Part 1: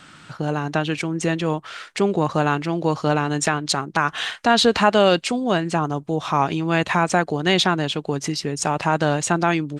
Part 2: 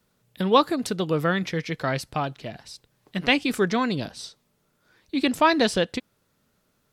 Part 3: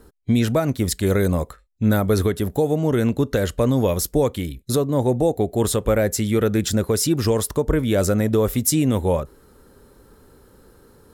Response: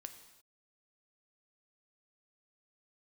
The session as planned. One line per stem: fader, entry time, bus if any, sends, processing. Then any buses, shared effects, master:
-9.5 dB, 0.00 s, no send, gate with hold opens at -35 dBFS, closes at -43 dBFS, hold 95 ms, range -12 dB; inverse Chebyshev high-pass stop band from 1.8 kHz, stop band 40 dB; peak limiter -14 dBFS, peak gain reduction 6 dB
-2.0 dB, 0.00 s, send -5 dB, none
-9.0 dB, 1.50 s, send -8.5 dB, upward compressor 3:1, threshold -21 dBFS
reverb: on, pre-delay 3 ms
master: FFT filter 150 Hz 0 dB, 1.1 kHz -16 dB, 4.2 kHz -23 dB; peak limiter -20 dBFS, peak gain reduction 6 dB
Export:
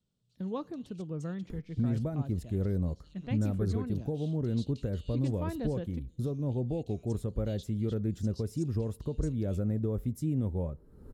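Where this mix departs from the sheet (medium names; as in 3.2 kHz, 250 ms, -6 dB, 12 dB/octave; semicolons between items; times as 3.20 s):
stem 1 -9.5 dB -> -3.0 dB; stem 2 -2.0 dB -> -9.5 dB; reverb return -6.0 dB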